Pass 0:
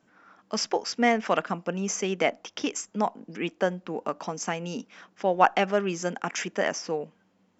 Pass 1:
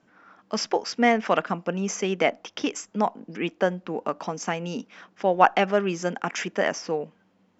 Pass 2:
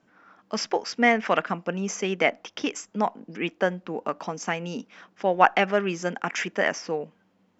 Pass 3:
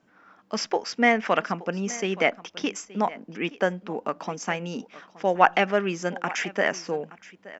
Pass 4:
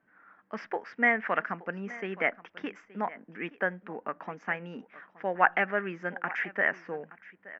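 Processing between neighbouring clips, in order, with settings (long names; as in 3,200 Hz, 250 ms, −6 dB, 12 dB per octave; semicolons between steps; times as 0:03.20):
Bessel low-pass filter 5,500 Hz; level +2.5 dB
dynamic equaliser 2,000 Hz, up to +5 dB, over −38 dBFS, Q 1.3; level −1.5 dB
single-tap delay 873 ms −19 dB
low-pass with resonance 1,800 Hz, resonance Q 3.2; level −9 dB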